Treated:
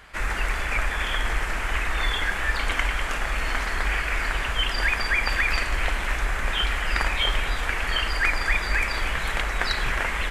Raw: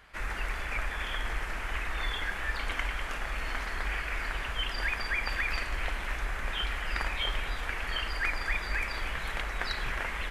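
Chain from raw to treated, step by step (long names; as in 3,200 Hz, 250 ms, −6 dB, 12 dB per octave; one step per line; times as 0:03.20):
parametric band 7,700 Hz +4 dB 0.54 octaves
level +8 dB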